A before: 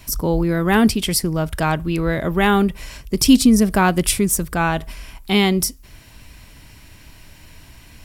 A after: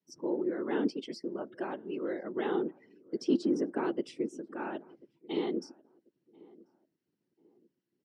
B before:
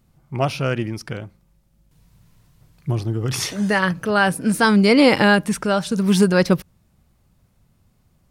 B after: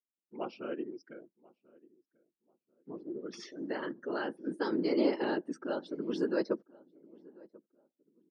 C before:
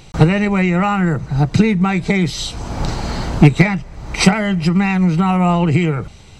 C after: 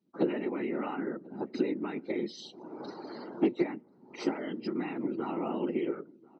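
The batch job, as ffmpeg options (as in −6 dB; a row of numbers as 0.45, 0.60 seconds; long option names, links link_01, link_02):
-filter_complex "[0:a]afftdn=noise_reduction=30:noise_floor=-30,acrossover=split=1100|2300[link_01][link_02][link_03];[link_02]acompressor=threshold=-37dB:ratio=4[link_04];[link_03]acompressor=threshold=-28dB:ratio=4[link_05];[link_01][link_04][link_05]amix=inputs=3:normalize=0,afftfilt=real='hypot(re,im)*cos(2*PI*random(0))':imag='hypot(re,im)*sin(2*PI*random(1))':win_size=512:overlap=0.75,highpass=frequency=270:width=0.5412,highpass=frequency=270:width=1.3066,equalizer=frequency=350:width_type=q:width=4:gain=7,equalizer=frequency=720:width_type=q:width=4:gain=-6,equalizer=frequency=1100:width_type=q:width=4:gain=-4,equalizer=frequency=2400:width_type=q:width=4:gain=-8,equalizer=frequency=3700:width_type=q:width=4:gain=-4,lowpass=frequency=5500:width=0.5412,lowpass=frequency=5500:width=1.3066,asplit=2[link_06][link_07];[link_07]adelay=1040,lowpass=frequency=840:poles=1,volume=-22.5dB,asplit=2[link_08][link_09];[link_09]adelay=1040,lowpass=frequency=840:poles=1,volume=0.33[link_10];[link_06][link_08][link_10]amix=inputs=3:normalize=0,volume=-8dB"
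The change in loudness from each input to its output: −16.5, −17.0, −18.5 LU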